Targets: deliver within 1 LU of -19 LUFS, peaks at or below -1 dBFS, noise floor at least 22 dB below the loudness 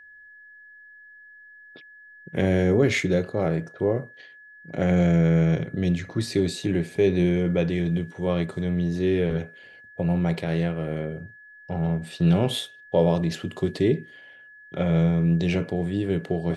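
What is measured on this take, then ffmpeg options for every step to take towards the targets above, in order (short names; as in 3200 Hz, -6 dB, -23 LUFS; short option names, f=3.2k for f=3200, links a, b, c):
steady tone 1700 Hz; tone level -46 dBFS; loudness -24.0 LUFS; peak -9.5 dBFS; loudness target -19.0 LUFS
-> -af "bandreject=f=1.7k:w=30"
-af "volume=5dB"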